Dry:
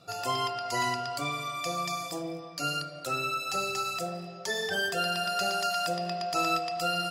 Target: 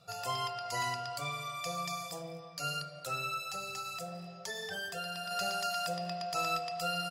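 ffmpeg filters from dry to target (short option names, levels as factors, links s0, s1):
-filter_complex "[0:a]firequalizer=gain_entry='entry(180,0);entry(300,-16);entry(460,-2);entry(14000,1)':delay=0.05:min_phase=1,asettb=1/sr,asplit=3[s0][s1][s2];[s0]atrim=end=3.394[s3];[s1]atrim=start=3.39:end=5.31,asetpts=PTS-STARTPTS,afade=t=in:d=0.004:c=qsin,afade=t=out:st=1.916:d=0.004:c=qsin,acompressor=threshold=0.0178:ratio=2.5[s4];[s2]atrim=start=5.306[s5];[s3][s4]acrossfade=d=0.004:c1=hsin:c2=qsin[s6];[s6][s5]acrossfade=d=0.004:c1=qsin:c2=hsin,volume=0.668"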